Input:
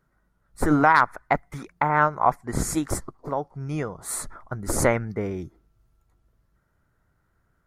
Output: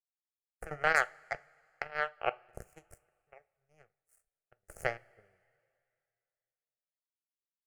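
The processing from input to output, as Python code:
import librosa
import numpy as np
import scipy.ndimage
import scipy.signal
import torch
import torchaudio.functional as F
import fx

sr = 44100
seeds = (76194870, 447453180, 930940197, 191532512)

y = fx.power_curve(x, sr, exponent=3.0)
y = fx.fixed_phaser(y, sr, hz=1000.0, stages=6)
y = fx.rev_double_slope(y, sr, seeds[0], early_s=0.27, late_s=2.4, knee_db=-21, drr_db=14.0)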